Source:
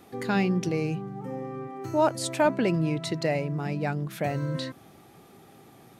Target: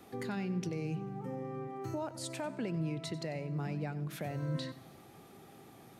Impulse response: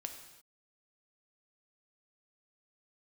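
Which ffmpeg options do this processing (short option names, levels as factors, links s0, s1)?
-filter_complex "[0:a]alimiter=limit=0.0841:level=0:latency=1:release=353,acrossover=split=210[s0][s1];[s1]acompressor=threshold=0.00794:ratio=1.5[s2];[s0][s2]amix=inputs=2:normalize=0,asplit=2[s3][s4];[1:a]atrim=start_sample=2205,adelay=94[s5];[s4][s5]afir=irnorm=-1:irlink=0,volume=0.237[s6];[s3][s6]amix=inputs=2:normalize=0,volume=0.708"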